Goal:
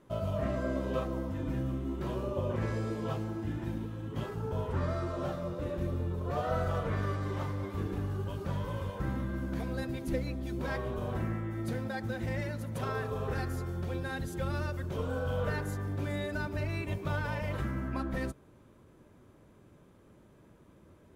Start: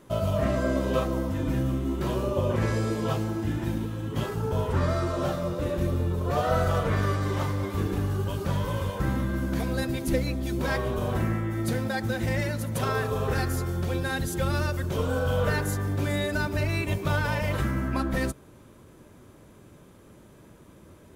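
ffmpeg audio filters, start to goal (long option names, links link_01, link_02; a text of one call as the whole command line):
ffmpeg -i in.wav -af "highshelf=frequency=3900:gain=-8,volume=-7dB" out.wav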